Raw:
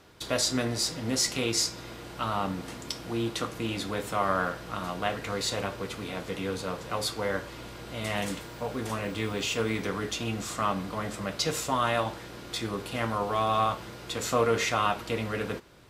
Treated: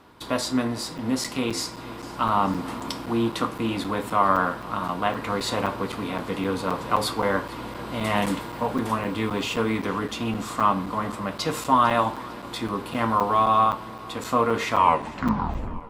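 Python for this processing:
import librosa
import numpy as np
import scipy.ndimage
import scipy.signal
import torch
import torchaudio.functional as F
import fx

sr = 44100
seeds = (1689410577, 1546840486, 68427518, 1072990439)

p1 = fx.tape_stop_end(x, sr, length_s=1.22)
p2 = p1 + fx.echo_feedback(p1, sr, ms=451, feedback_pct=53, wet_db=-21, dry=0)
p3 = fx.rider(p2, sr, range_db=10, speed_s=2.0)
p4 = fx.graphic_eq_15(p3, sr, hz=(250, 1000, 6300), db=(8, 10, -6))
y = fx.buffer_crackle(p4, sr, first_s=0.98, period_s=0.26, block=256, kind='zero')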